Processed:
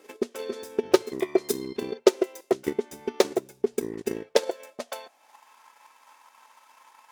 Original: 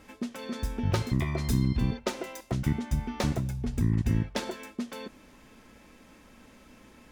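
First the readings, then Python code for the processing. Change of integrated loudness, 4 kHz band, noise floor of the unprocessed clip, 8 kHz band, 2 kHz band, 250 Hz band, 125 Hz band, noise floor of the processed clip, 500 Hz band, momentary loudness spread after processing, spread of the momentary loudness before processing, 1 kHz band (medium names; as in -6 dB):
+2.5 dB, +4.5 dB, -56 dBFS, +5.5 dB, +2.0 dB, 0.0 dB, -22.0 dB, -61 dBFS, +14.0 dB, 13 LU, 11 LU, +3.5 dB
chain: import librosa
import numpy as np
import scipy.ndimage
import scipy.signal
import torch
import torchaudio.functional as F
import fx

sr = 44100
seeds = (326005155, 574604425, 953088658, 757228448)

y = fx.high_shelf(x, sr, hz=3900.0, db=7.5)
y = fx.hum_notches(y, sr, base_hz=50, count=3)
y = fx.filter_sweep_highpass(y, sr, from_hz=400.0, to_hz=930.0, start_s=4.12, end_s=5.5, q=6.4)
y = fx.transient(y, sr, attack_db=10, sustain_db=-5)
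y = F.gain(torch.from_numpy(y), -5.0).numpy()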